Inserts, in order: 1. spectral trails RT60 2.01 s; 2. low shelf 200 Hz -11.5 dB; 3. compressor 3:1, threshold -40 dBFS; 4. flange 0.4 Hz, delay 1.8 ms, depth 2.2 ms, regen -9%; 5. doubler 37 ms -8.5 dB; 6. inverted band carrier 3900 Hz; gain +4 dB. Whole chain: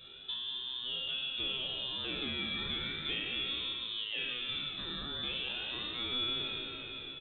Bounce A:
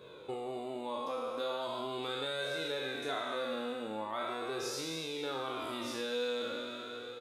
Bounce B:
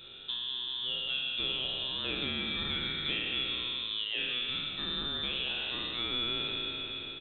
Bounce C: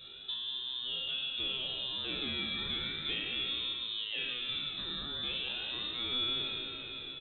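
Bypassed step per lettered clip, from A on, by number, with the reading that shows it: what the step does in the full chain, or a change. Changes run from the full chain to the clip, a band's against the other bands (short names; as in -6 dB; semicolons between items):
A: 6, 500 Hz band +15.0 dB; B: 4, loudness change +3.0 LU; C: 2, 4 kHz band +2.0 dB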